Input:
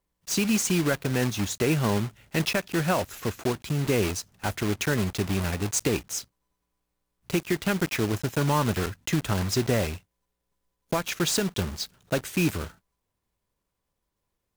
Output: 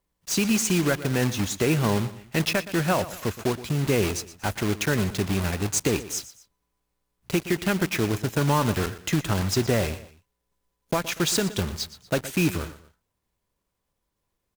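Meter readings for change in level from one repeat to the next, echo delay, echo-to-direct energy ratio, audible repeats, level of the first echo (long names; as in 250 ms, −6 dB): −8.0 dB, 119 ms, −15.0 dB, 2, −15.5 dB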